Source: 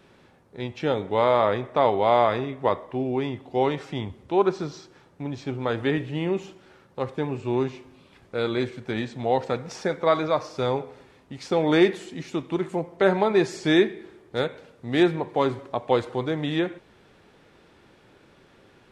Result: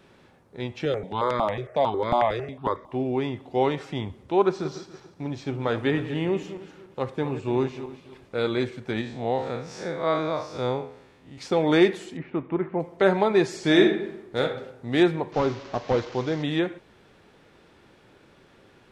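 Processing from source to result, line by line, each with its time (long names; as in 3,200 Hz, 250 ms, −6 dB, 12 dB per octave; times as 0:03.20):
0:00.85–0:02.92: step-sequenced phaser 11 Hz 240–2,800 Hz
0:04.43–0:08.47: feedback delay that plays each chunk backwards 143 ms, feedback 51%, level −12.5 dB
0:09.01–0:11.38: spectrum smeared in time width 112 ms
0:12.17–0:12.80: low-pass filter 2,200 Hz 24 dB per octave
0:13.58–0:14.42: thrown reverb, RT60 0.82 s, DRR 2.5 dB
0:15.32–0:16.43: linear delta modulator 32 kbit/s, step −36.5 dBFS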